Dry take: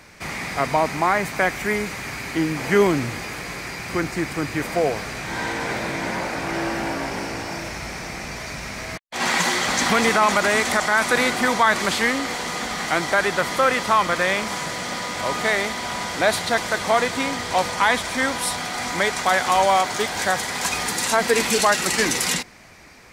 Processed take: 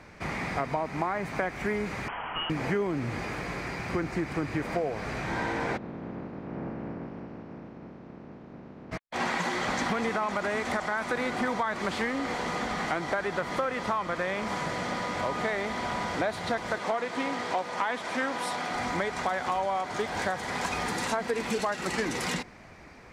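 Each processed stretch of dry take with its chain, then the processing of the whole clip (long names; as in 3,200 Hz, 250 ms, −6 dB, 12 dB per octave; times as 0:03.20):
0:02.08–0:02.50: low-shelf EQ 360 Hz −9.5 dB + gain into a clipping stage and back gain 20 dB + voice inversion scrambler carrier 3,200 Hz
0:05.76–0:08.91: ceiling on every frequency bin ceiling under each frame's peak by 17 dB + resonant band-pass 210 Hz, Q 1.3 + high-frequency loss of the air 64 metres
0:16.78–0:18.71: Bessel high-pass filter 260 Hz + highs frequency-modulated by the lows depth 0.12 ms
whole clip: high-shelf EQ 2,300 Hz −11 dB; downward compressor, threshold −26 dBFS; high-shelf EQ 11,000 Hz −10.5 dB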